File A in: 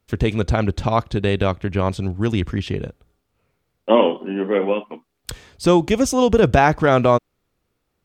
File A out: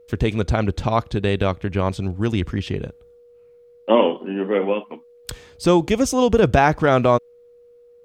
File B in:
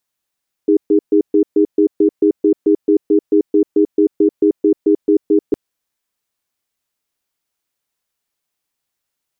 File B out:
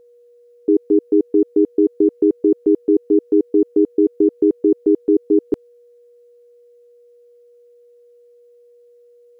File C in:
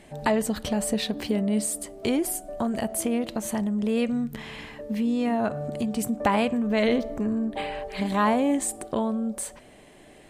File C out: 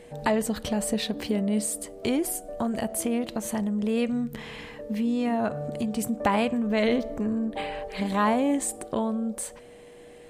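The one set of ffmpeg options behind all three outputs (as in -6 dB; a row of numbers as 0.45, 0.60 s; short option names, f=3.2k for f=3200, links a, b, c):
-af "aeval=exprs='val(0)+0.00501*sin(2*PI*480*n/s)':c=same,volume=-1dB"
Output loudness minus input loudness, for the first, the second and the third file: -1.0, -1.0, -1.0 LU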